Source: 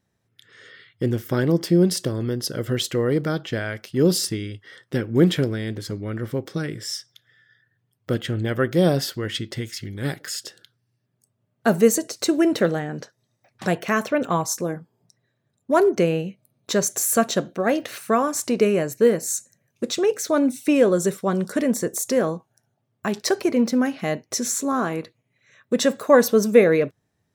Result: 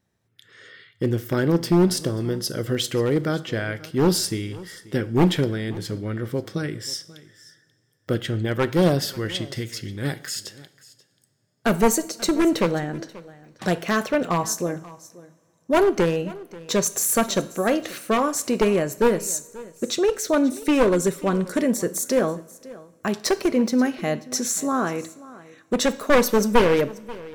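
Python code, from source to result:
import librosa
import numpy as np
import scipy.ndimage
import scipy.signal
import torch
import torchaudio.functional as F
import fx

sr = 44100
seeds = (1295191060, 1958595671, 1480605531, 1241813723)

p1 = np.minimum(x, 2.0 * 10.0 ** (-14.5 / 20.0) - x)
p2 = p1 + fx.echo_single(p1, sr, ms=535, db=-20.0, dry=0)
y = fx.rev_double_slope(p2, sr, seeds[0], early_s=0.59, late_s=3.6, knee_db=-22, drr_db=14.0)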